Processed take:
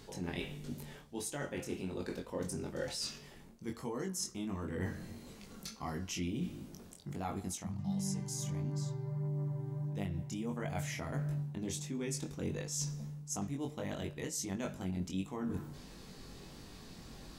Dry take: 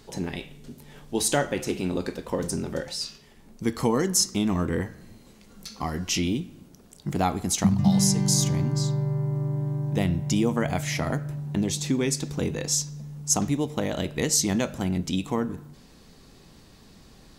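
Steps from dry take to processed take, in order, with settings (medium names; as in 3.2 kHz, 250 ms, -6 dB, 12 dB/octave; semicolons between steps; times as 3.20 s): dynamic bell 4.3 kHz, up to -6 dB, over -46 dBFS, Q 2.4; reverse; compression 12:1, threshold -36 dBFS, peak gain reduction 21.5 dB; reverse; chorus 1.5 Hz, delay 20 ms, depth 2.9 ms; trim +3.5 dB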